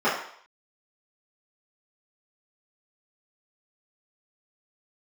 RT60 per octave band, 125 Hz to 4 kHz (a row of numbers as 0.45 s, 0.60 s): 0.35 s, 0.45 s, 0.60 s, 0.65 s, 0.60 s, 0.65 s